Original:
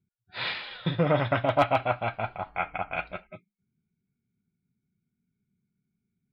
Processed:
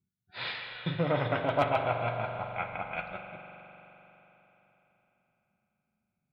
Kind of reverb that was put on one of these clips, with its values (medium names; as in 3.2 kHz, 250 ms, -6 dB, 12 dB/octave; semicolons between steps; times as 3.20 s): spring tank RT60 3.8 s, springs 42 ms, chirp 25 ms, DRR 4 dB; trim -5 dB